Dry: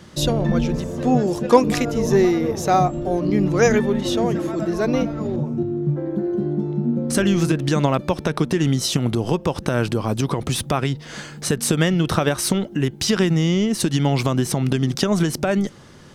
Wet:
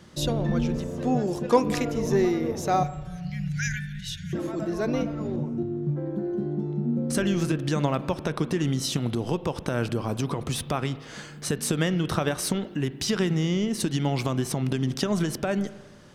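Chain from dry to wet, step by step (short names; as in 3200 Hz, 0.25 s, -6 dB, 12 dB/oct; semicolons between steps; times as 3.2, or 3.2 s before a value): 2.83–4.33 brick-wall FIR band-stop 190–1400 Hz; on a send: reverb RT60 1.4 s, pre-delay 34 ms, DRR 14 dB; on the sum: gain -6.5 dB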